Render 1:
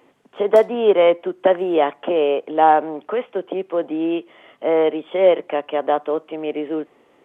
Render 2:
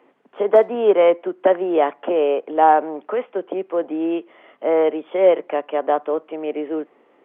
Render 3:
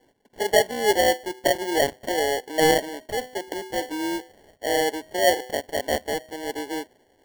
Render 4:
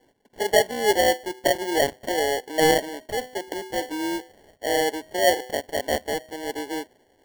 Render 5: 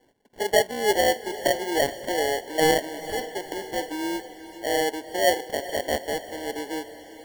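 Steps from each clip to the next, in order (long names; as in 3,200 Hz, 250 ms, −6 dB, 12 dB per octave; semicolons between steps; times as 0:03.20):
three-way crossover with the lows and the highs turned down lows −23 dB, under 180 Hz, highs −15 dB, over 2,800 Hz
hum removal 126.3 Hz, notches 5; decimation without filtering 35×; level −5.5 dB
no processing that can be heard
feedback delay with all-pass diffusion 450 ms, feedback 53%, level −14 dB; level −1.5 dB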